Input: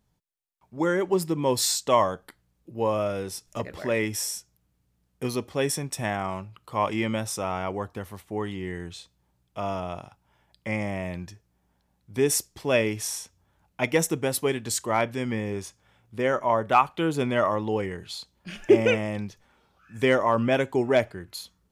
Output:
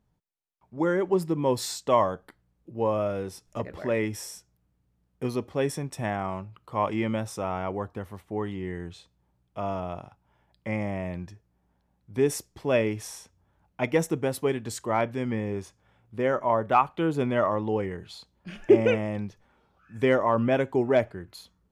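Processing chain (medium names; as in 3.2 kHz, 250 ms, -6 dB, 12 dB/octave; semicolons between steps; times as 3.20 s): treble shelf 2.5 kHz -10.5 dB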